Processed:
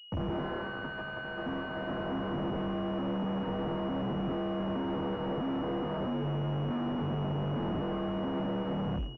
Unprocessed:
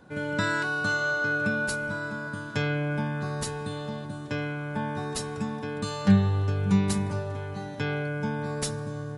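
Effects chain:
fade-out on the ending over 0.54 s
dynamic equaliser 250 Hz, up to +4 dB, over −40 dBFS, Q 2.7
automatic gain control gain up to 13.5 dB
comparator with hysteresis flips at −26 dBFS
frequency shifter +47 Hz
gain into a clipping stage and back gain 24 dB
high-frequency loss of the air 280 metres
echo with shifted repeats 85 ms, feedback 47%, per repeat +78 Hz, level −14 dB
switching amplifier with a slow clock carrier 2,900 Hz
level −6.5 dB

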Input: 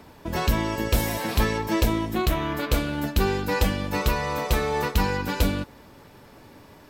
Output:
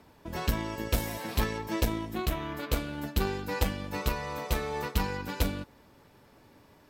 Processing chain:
harmonic generator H 3 −15 dB, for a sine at −8.5 dBFS
level −2.5 dB
AC-3 320 kbit/s 48,000 Hz

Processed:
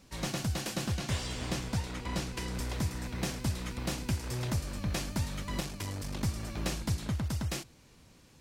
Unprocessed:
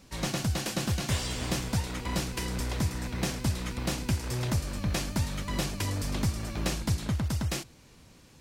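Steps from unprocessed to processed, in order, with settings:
0:00.87–0:02.55: high-shelf EQ 11,000 Hz −9 dB
0:05.60–0:06.23: tube saturation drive 23 dB, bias 0.6
level −3.5 dB

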